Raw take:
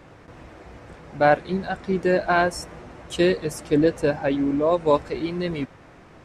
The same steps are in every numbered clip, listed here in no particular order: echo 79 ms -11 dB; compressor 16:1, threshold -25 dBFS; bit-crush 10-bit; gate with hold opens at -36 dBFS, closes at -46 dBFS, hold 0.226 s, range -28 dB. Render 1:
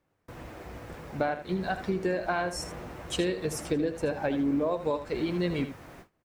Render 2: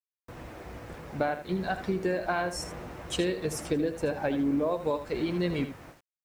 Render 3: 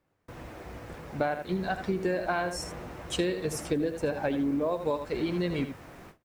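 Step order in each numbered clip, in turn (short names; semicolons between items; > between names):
bit-crush > compressor > echo > gate with hold; compressor > gate with hold > echo > bit-crush; echo > compressor > bit-crush > gate with hold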